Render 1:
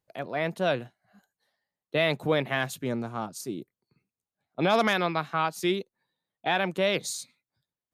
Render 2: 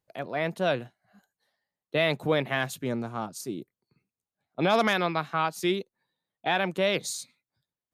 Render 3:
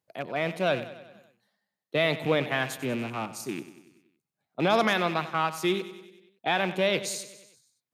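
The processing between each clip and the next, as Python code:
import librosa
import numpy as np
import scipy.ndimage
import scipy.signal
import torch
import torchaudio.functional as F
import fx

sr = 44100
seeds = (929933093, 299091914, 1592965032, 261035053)

y1 = x
y2 = fx.rattle_buzz(y1, sr, strikes_db=-38.0, level_db=-28.0)
y2 = scipy.signal.sosfilt(scipy.signal.butter(2, 98.0, 'highpass', fs=sr, output='sos'), y2)
y2 = fx.echo_feedback(y2, sr, ms=95, feedback_pct=59, wet_db=-14.5)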